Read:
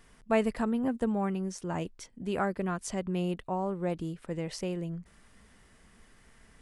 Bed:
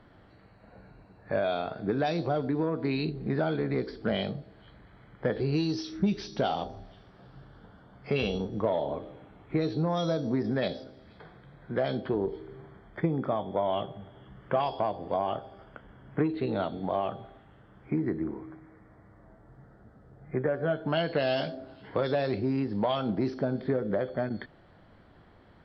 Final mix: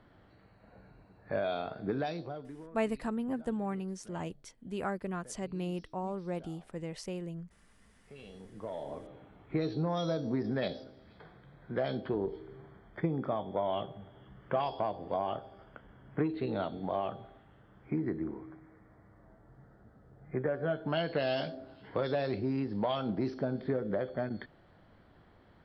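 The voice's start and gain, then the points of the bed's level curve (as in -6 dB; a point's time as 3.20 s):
2.45 s, -5.0 dB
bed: 1.96 s -4.5 dB
2.93 s -27 dB
7.98 s -27 dB
9.14 s -4 dB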